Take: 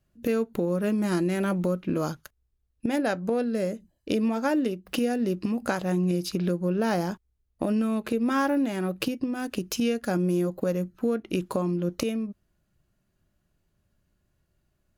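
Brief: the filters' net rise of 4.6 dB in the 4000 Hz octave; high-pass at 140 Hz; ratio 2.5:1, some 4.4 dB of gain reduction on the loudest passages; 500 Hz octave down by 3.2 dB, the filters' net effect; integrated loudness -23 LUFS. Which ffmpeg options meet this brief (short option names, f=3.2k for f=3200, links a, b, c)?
-af "highpass=140,equalizer=f=500:t=o:g=-4,equalizer=f=4k:t=o:g=6.5,acompressor=threshold=-29dB:ratio=2.5,volume=9.5dB"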